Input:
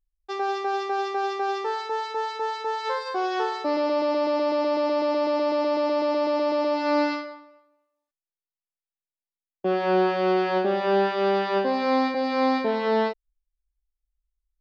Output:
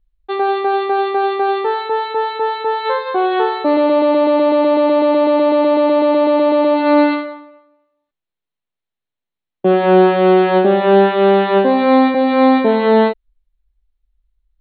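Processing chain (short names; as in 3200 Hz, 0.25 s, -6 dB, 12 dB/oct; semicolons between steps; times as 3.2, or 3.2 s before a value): Chebyshev low-pass 4300 Hz, order 10; low shelf 350 Hz +8 dB; gain +8.5 dB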